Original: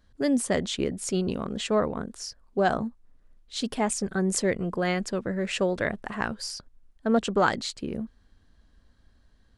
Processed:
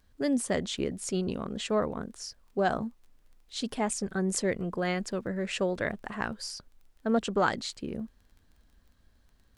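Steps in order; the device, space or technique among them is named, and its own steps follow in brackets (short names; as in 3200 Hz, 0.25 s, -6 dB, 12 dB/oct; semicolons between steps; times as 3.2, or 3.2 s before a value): vinyl LP (crackle 21/s -46 dBFS; pink noise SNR 45 dB); gain -3.5 dB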